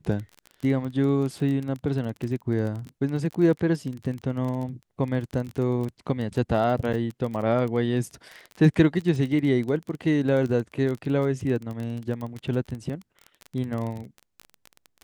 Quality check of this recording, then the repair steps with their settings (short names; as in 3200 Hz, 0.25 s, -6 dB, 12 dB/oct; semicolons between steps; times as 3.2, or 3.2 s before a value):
crackle 24/s -30 dBFS
6.93–6.94 gap 7.1 ms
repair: de-click; interpolate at 6.93, 7.1 ms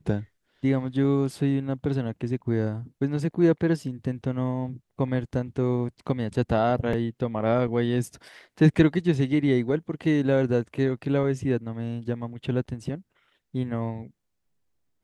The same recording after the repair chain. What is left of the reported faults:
none